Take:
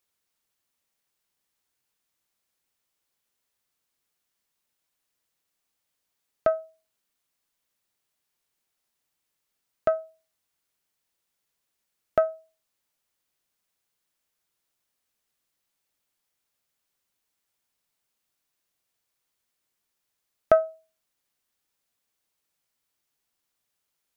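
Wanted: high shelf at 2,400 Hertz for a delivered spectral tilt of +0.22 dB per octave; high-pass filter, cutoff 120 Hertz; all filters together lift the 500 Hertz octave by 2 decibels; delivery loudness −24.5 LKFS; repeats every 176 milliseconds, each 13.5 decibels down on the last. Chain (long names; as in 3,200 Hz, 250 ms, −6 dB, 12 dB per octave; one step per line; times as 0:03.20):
high-pass filter 120 Hz
parametric band 500 Hz +3.5 dB
high-shelf EQ 2,400 Hz −4.5 dB
repeating echo 176 ms, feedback 21%, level −13.5 dB
level +1 dB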